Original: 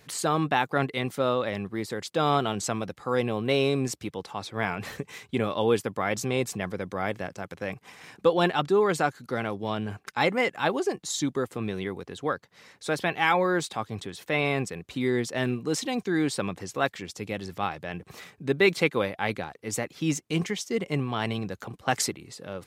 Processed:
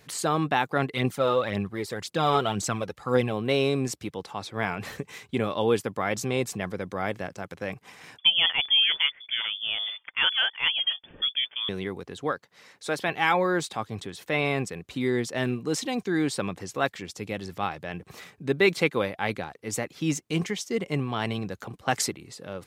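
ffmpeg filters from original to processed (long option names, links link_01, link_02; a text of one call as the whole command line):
ffmpeg -i in.wav -filter_complex "[0:a]asplit=3[link_01][link_02][link_03];[link_01]afade=type=out:start_time=0.93:duration=0.02[link_04];[link_02]aphaser=in_gain=1:out_gain=1:delay=2.5:decay=0.49:speed=1.9:type=triangular,afade=type=in:start_time=0.93:duration=0.02,afade=type=out:start_time=3.31:duration=0.02[link_05];[link_03]afade=type=in:start_time=3.31:duration=0.02[link_06];[link_04][link_05][link_06]amix=inputs=3:normalize=0,asettb=1/sr,asplit=3[link_07][link_08][link_09];[link_07]atrim=end=8.184[link_10];[link_08]atrim=start=8.18:end=11.69,asetpts=PTS-STARTPTS,afade=type=in:duration=0.004:curve=qsin,afade=type=out:start_time=3.506:duration=0.004:curve=qsin,lowpass=frequency=3100:width_type=q:width=0.5098,lowpass=frequency=3100:width_type=q:width=0.6013,lowpass=frequency=3100:width_type=q:width=0.9,lowpass=frequency=3100:width_type=q:width=2.563,afreqshift=-3600[link_11];[link_09]atrim=start=11.686[link_12];[link_10][link_11]acrossfade=duration=0.004:curve1=hsin:curve2=qsin[link_13];[link_13][link_12]acrossfade=duration=0.004:curve1=qsin:curve2=hsin,asettb=1/sr,asplit=3[link_14][link_15][link_16];[link_14]atrim=end=12.314[link_17];[link_15]atrim=start=12.31:end=13.09,asetpts=PTS-STARTPTS,afade=type=in:duration=0.004:curve=qsin,afade=type=out:start_time=0.776:duration=0.004:curve=qsin,lowshelf=frequency=160:gain=-9[link_18];[link_16]atrim=start=13.086[link_19];[link_17][link_18]acrossfade=duration=0.004:curve1=hsin:curve2=qsin[link_20];[link_20][link_19]acrossfade=duration=0.004:curve1=qsin:curve2=hsin" out.wav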